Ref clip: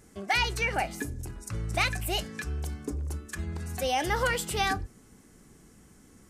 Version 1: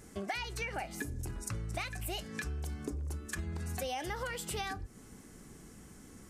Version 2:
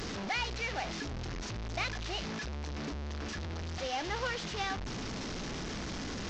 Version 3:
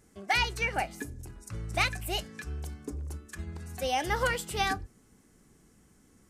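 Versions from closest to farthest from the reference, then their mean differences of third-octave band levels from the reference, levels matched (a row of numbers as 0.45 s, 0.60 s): 3, 1, 2; 3.0 dB, 5.5 dB, 12.5 dB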